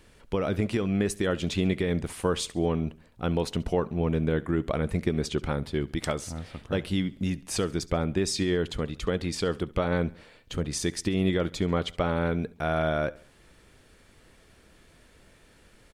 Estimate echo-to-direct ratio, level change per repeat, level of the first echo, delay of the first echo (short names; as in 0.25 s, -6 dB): -20.0 dB, -7.0 dB, -21.0 dB, 69 ms